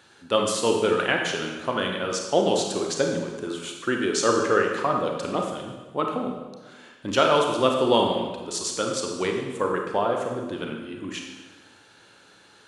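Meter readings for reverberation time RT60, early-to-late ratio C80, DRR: 1.3 s, 5.5 dB, 1.5 dB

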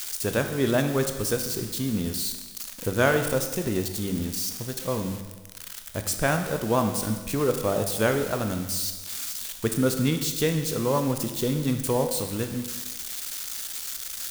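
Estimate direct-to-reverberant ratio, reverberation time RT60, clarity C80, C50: 6.0 dB, 1.2 s, 9.5 dB, 8.0 dB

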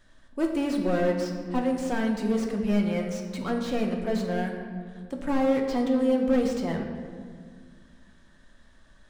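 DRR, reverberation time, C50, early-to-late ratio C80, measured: 1.5 dB, 1.9 s, 5.0 dB, 6.5 dB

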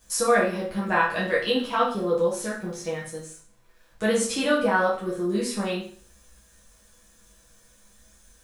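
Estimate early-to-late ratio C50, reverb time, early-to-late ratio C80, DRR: 5.0 dB, 0.45 s, 10.0 dB, -7.5 dB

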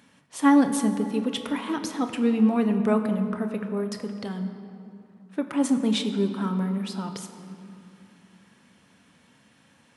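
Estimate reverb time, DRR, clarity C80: 2.9 s, 6.0 dB, 9.0 dB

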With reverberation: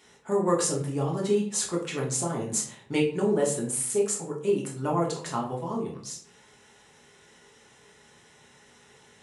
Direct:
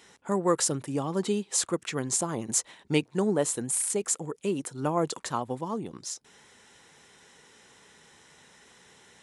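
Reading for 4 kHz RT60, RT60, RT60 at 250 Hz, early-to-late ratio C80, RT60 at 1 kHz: 0.35 s, 0.60 s, 0.70 s, 11.0 dB, 0.55 s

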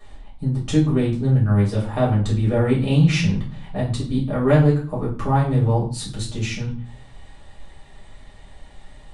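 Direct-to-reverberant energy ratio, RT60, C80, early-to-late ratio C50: -7.0 dB, 0.45 s, 12.0 dB, 7.5 dB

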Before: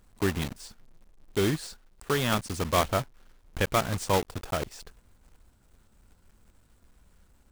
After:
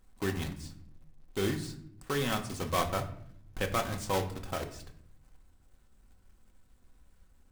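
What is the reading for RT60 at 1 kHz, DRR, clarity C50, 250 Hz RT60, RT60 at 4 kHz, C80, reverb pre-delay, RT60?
0.60 s, 3.5 dB, 12.0 dB, 1.2 s, 0.45 s, 15.5 dB, 3 ms, 0.70 s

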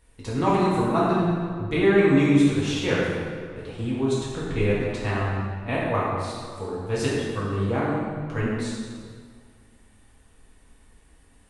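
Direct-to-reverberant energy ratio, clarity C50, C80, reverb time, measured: -8.5 dB, -1.5 dB, 0.5 dB, 2.0 s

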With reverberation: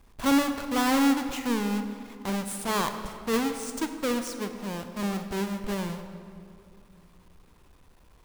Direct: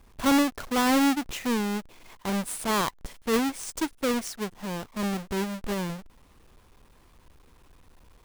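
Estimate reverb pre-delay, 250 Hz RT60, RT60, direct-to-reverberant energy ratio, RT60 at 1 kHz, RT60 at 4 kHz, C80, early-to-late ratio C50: 24 ms, 3.0 s, 2.4 s, 7.0 dB, 2.2 s, 1.4 s, 9.0 dB, 8.0 dB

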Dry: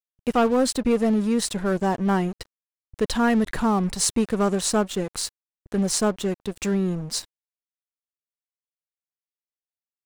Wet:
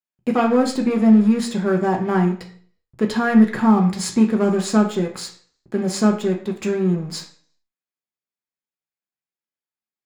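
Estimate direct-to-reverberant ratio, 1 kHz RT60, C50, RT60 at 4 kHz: 1.0 dB, 0.50 s, 10.5 dB, 0.45 s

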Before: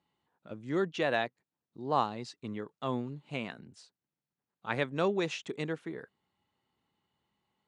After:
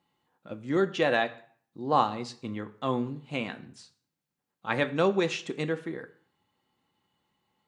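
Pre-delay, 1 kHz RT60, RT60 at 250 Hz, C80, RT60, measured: 4 ms, 0.55 s, 0.60 s, 19.5 dB, 0.50 s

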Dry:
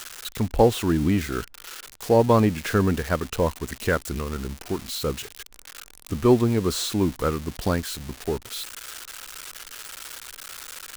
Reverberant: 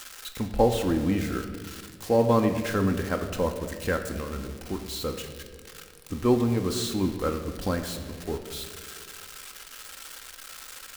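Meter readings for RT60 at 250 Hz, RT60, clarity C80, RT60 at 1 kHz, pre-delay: 2.2 s, 2.0 s, 9.5 dB, 1.5 s, 4 ms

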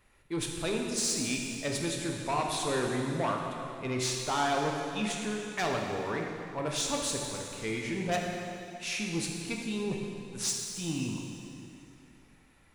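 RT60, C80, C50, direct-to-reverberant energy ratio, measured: 2.7 s, 3.0 dB, 1.5 dB, 0.0 dB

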